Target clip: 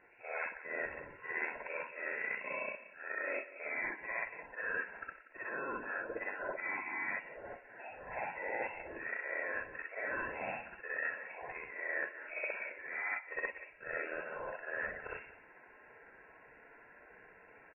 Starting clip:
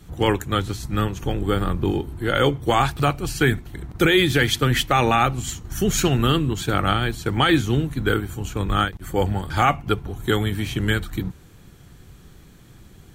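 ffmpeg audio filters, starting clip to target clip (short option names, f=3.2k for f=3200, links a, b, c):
-af "afftfilt=real='re':imag='-im':win_size=4096:overlap=0.75,highpass=1.2k,highshelf=f=2.4k:g=6,areverse,acompressor=threshold=-40dB:ratio=16,areverse,aecho=1:1:132:0.158,lowpass=f=3.3k:t=q:w=0.5098,lowpass=f=3.3k:t=q:w=0.6013,lowpass=f=3.3k:t=q:w=0.9,lowpass=f=3.3k:t=q:w=2.563,afreqshift=-3900,asuperstop=centerf=1600:order=8:qfactor=5.4,asetrate=32667,aresample=44100,volume=6dB" -ar 24000 -c:a libmp3lame -b:a 16k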